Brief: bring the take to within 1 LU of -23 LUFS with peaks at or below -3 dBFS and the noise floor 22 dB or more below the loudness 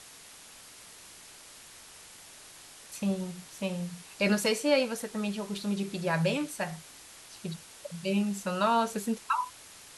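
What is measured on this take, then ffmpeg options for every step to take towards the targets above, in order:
noise floor -51 dBFS; noise floor target -53 dBFS; loudness -31.0 LUFS; peak -13.5 dBFS; loudness target -23.0 LUFS
-> -af "afftdn=nr=6:nf=-51"
-af "volume=8dB"

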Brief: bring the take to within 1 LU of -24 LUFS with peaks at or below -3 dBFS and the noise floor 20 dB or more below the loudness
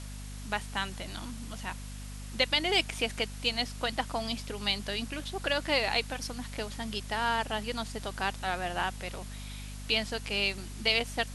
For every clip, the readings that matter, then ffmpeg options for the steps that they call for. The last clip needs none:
hum 50 Hz; harmonics up to 250 Hz; hum level -39 dBFS; noise floor -41 dBFS; noise floor target -52 dBFS; loudness -31.5 LUFS; peak -11.0 dBFS; loudness target -24.0 LUFS
-> -af "bandreject=f=50:t=h:w=4,bandreject=f=100:t=h:w=4,bandreject=f=150:t=h:w=4,bandreject=f=200:t=h:w=4,bandreject=f=250:t=h:w=4"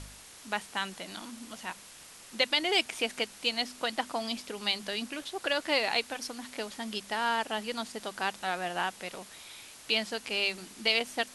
hum none; noise floor -51 dBFS; noise floor target -52 dBFS
-> -af "afftdn=nr=6:nf=-51"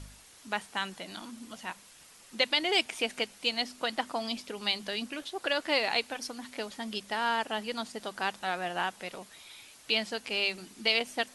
noise floor -55 dBFS; loudness -31.5 LUFS; peak -11.5 dBFS; loudness target -24.0 LUFS
-> -af "volume=7.5dB"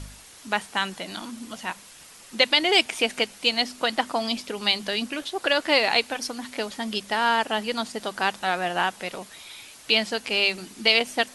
loudness -24.0 LUFS; peak -4.0 dBFS; noise floor -48 dBFS

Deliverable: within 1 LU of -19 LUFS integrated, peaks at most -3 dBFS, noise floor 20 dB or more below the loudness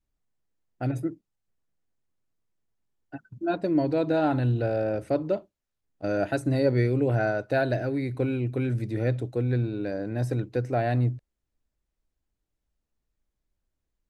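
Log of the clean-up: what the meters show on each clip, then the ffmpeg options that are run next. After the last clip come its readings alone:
loudness -27.0 LUFS; peak -12.5 dBFS; loudness target -19.0 LUFS
-> -af "volume=8dB"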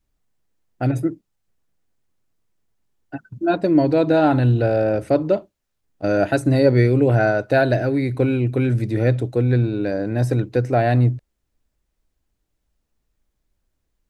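loudness -19.0 LUFS; peak -4.5 dBFS; noise floor -75 dBFS

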